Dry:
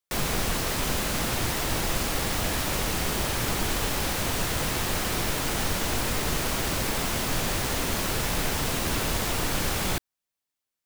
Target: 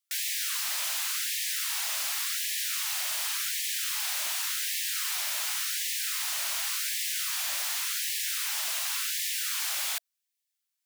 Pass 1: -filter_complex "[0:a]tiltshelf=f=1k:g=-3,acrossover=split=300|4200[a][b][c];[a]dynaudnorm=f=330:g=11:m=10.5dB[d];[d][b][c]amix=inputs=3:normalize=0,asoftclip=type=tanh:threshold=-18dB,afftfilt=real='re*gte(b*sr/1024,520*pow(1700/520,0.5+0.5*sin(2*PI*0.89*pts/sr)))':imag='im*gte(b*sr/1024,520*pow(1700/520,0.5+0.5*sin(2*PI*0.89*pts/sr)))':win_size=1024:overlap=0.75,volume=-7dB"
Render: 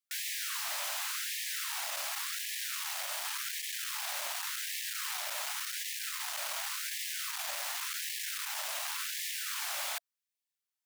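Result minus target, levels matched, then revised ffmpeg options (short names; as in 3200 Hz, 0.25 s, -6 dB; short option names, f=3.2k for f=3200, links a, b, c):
1000 Hz band +6.5 dB
-filter_complex "[0:a]tiltshelf=f=1k:g=-11,acrossover=split=300|4200[a][b][c];[a]dynaudnorm=f=330:g=11:m=10.5dB[d];[d][b][c]amix=inputs=3:normalize=0,asoftclip=type=tanh:threshold=-18dB,afftfilt=real='re*gte(b*sr/1024,520*pow(1700/520,0.5+0.5*sin(2*PI*0.89*pts/sr)))':imag='im*gte(b*sr/1024,520*pow(1700/520,0.5+0.5*sin(2*PI*0.89*pts/sr)))':win_size=1024:overlap=0.75,volume=-7dB"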